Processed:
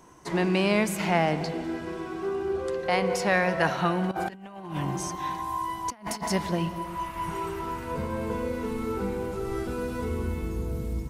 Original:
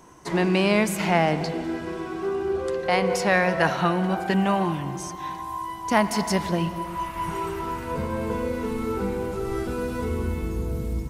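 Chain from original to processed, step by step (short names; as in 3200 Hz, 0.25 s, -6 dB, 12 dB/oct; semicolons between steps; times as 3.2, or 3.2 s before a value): 4.11–6.28 negative-ratio compressor -29 dBFS, ratio -0.5; gain -3 dB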